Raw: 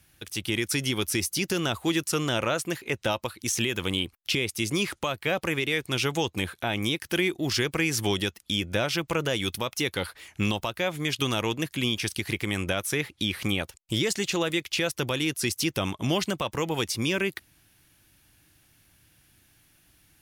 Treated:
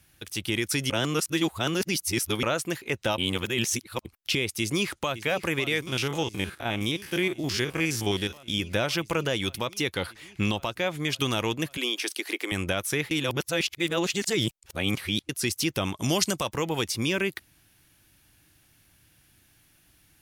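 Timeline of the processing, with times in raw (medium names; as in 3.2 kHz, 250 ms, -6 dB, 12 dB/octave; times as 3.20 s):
0.90–2.43 s: reverse
3.18–4.05 s: reverse
4.60–5.15 s: echo throw 550 ms, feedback 85%, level -13.5 dB
5.82–8.60 s: spectrogram pixelated in time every 50 ms
9.25–11.10 s: treble shelf 9.2 kHz -5.5 dB
11.77–12.52 s: steep high-pass 280 Hz 48 dB/octave
13.11–15.29 s: reverse
15.95–16.49 s: high-order bell 7.6 kHz +10 dB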